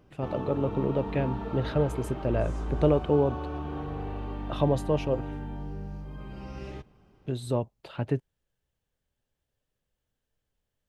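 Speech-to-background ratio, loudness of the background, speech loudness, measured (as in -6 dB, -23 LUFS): 7.5 dB, -36.5 LUFS, -29.0 LUFS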